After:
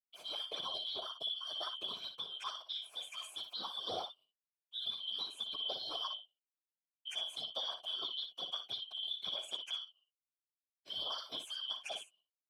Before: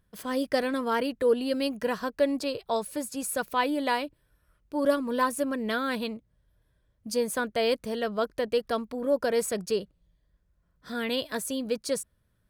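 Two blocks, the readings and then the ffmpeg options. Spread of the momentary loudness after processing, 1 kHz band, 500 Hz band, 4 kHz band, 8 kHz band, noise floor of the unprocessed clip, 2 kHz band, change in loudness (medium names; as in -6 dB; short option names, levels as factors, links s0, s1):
5 LU, -16.5 dB, -25.0 dB, +2.0 dB, -17.5 dB, -71 dBFS, -21.0 dB, -11.0 dB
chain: -filter_complex "[0:a]afftfilt=real='real(if(lt(b,272),68*(eq(floor(b/68),0)*1+eq(floor(b/68),1)*3+eq(floor(b/68),2)*0+eq(floor(b/68),3)*2)+mod(b,68),b),0)':imag='imag(if(lt(b,272),68*(eq(floor(b/68),0)*1+eq(floor(b/68),1)*3+eq(floor(b/68),2)*0+eq(floor(b/68),3)*2)+mod(b,68),b),0)':win_size=2048:overlap=0.75,highpass=f=74:p=1,acrossover=split=9300[s0][s1];[s1]acompressor=threshold=0.00224:ratio=4:attack=1:release=60[s2];[s0][s2]amix=inputs=2:normalize=0,aemphasis=mode=production:type=75kf,agate=range=0.00158:threshold=0.00355:ratio=16:detection=peak,equalizer=f=510:w=0.75:g=3,aecho=1:1:4.5:0.98,acompressor=threshold=0.0891:ratio=6,asplit=3[s3][s4][s5];[s3]bandpass=f=730:t=q:w=8,volume=1[s6];[s4]bandpass=f=1090:t=q:w=8,volume=0.501[s7];[s5]bandpass=f=2440:t=q:w=8,volume=0.355[s8];[s6][s7][s8]amix=inputs=3:normalize=0,afftfilt=real='hypot(re,im)*cos(2*PI*random(0))':imag='hypot(re,im)*sin(2*PI*random(1))':win_size=512:overlap=0.75,afreqshift=-31,aecho=1:1:58|69:0.316|0.126,volume=2.51"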